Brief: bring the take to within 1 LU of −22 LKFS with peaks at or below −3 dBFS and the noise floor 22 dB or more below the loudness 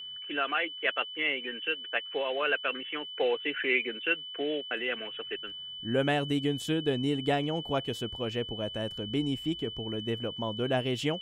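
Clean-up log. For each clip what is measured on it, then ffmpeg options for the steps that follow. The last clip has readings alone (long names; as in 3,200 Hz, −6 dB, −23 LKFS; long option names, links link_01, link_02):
interfering tone 3,000 Hz; level of the tone −39 dBFS; integrated loudness −31.0 LKFS; sample peak −14.5 dBFS; target loudness −22.0 LKFS
→ -af "bandreject=frequency=3000:width=30"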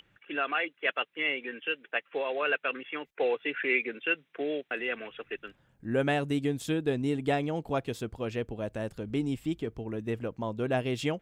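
interfering tone none found; integrated loudness −31.5 LKFS; sample peak −14.5 dBFS; target loudness −22.0 LKFS
→ -af "volume=9.5dB"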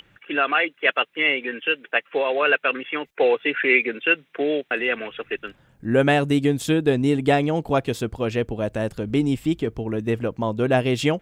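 integrated loudness −22.0 LKFS; sample peak −5.0 dBFS; background noise floor −61 dBFS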